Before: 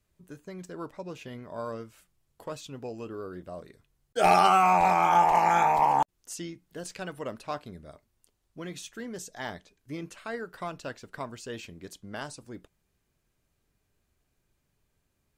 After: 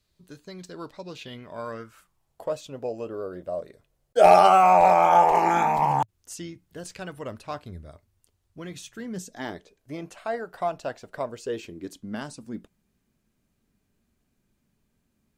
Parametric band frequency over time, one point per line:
parametric band +12.5 dB 0.72 octaves
0:01.16 4,200 Hz
0:02.51 580 Hz
0:05.19 580 Hz
0:06.17 88 Hz
0:08.73 88 Hz
0:09.94 710 Hz
0:11.00 710 Hz
0:12.16 220 Hz

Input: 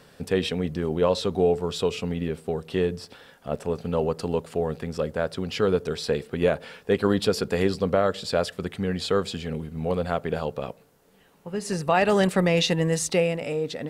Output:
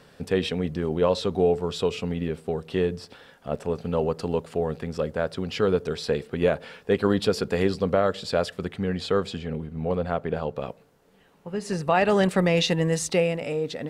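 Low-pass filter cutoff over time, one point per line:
low-pass filter 6 dB per octave
6,700 Hz
from 0:08.67 3,800 Hz
from 0:09.39 2,100 Hz
from 0:10.56 4,900 Hz
from 0:12.31 8,900 Hz

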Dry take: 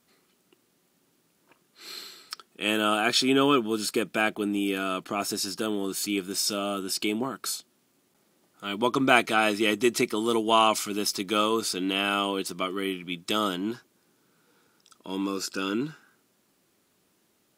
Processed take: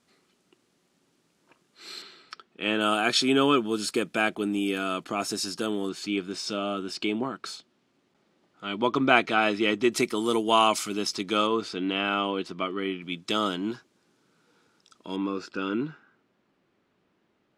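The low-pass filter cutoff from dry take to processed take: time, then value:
7,900 Hz
from 0:02.02 3,500 Hz
from 0:02.81 9,500 Hz
from 0:05.89 4,100 Hz
from 0:09.92 11,000 Hz
from 0:10.93 6,400 Hz
from 0:11.47 3,200 Hz
from 0:13.02 6,800 Hz
from 0:15.16 2,600 Hz

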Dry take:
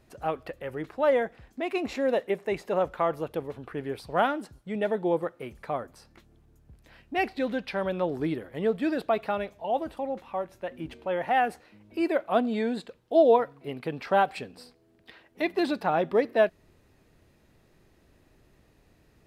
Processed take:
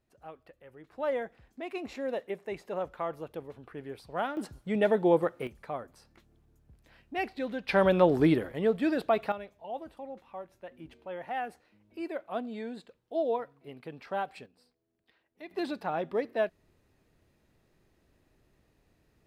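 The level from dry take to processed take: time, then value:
−17 dB
from 0:00.91 −8 dB
from 0:04.37 +2.5 dB
from 0:05.47 −5.5 dB
from 0:07.69 +6 dB
from 0:08.52 −0.5 dB
from 0:09.32 −10.5 dB
from 0:14.46 −18 dB
from 0:15.51 −7 dB

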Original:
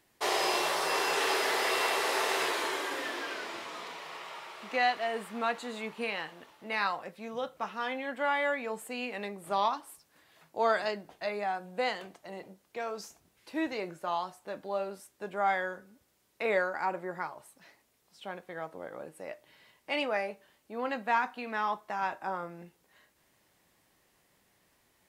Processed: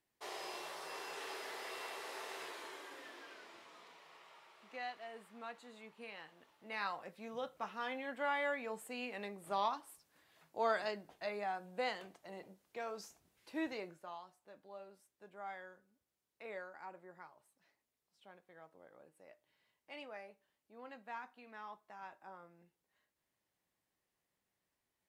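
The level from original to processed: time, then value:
0:05.99 −17 dB
0:07.12 −7 dB
0:13.72 −7 dB
0:14.22 −18.5 dB

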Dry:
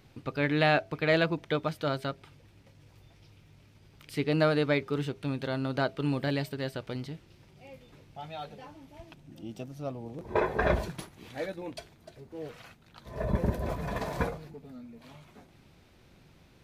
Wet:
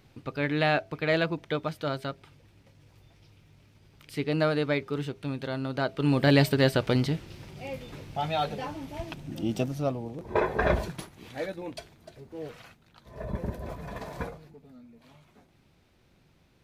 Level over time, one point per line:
0:05.80 −0.5 dB
0:06.44 +12 dB
0:09.64 +12 dB
0:10.20 +1.5 dB
0:12.53 +1.5 dB
0:13.07 −5 dB

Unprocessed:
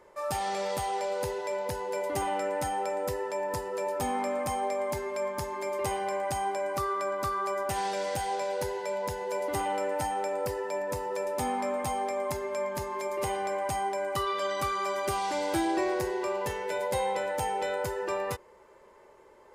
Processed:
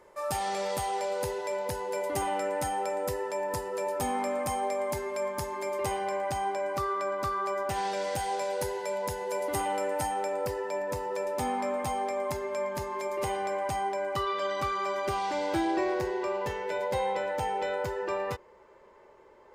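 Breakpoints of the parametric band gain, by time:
parametric band 11,000 Hz 1.1 octaves
0:05.53 +2.5 dB
0:06.33 −6.5 dB
0:07.81 −6.5 dB
0:08.42 +4.5 dB
0:09.97 +4.5 dB
0:10.52 −3.5 dB
0:13.42 −3.5 dB
0:14.36 −12.5 dB

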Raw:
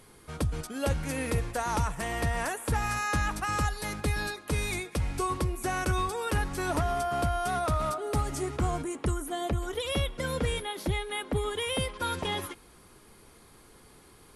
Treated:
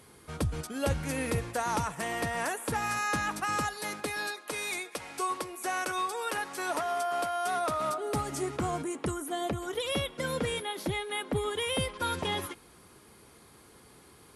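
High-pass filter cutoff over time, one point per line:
0:00.90 60 Hz
0:02.03 170 Hz
0:03.53 170 Hz
0:04.38 460 Hz
0:07.36 460 Hz
0:08.18 140 Hz
0:10.93 140 Hz
0:11.87 69 Hz

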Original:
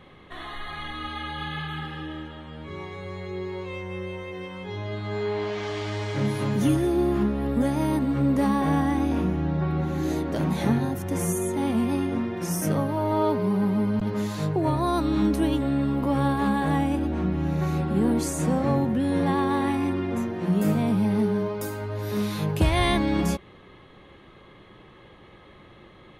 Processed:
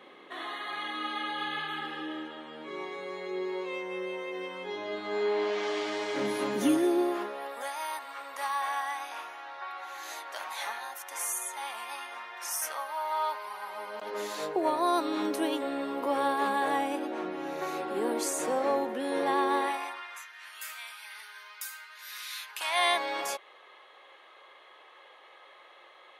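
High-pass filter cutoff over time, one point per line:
high-pass filter 24 dB per octave
0:06.77 280 Hz
0:07.77 860 Hz
0:13.61 860 Hz
0:14.27 380 Hz
0:19.57 380 Hz
0:20.25 1,500 Hz
0:22.46 1,500 Hz
0:22.86 570 Hz

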